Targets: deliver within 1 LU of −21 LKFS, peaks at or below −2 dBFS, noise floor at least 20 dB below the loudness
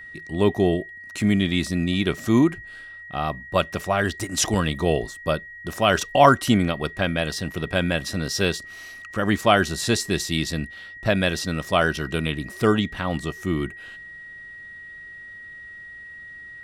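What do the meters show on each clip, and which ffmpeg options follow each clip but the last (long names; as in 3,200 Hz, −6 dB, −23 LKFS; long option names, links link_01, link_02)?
interfering tone 1,900 Hz; level of the tone −38 dBFS; integrated loudness −23.0 LKFS; sample peak −1.5 dBFS; target loudness −21.0 LKFS
→ -af "bandreject=frequency=1900:width=30"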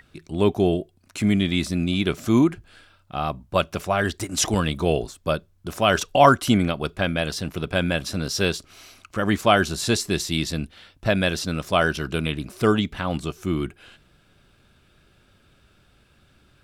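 interfering tone none found; integrated loudness −23.0 LKFS; sample peak −1.5 dBFS; target loudness −21.0 LKFS
→ -af "volume=2dB,alimiter=limit=-2dB:level=0:latency=1"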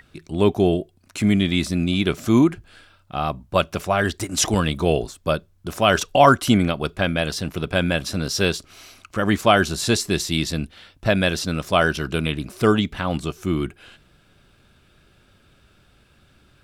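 integrated loudness −21.0 LKFS; sample peak −2.0 dBFS; background noise floor −58 dBFS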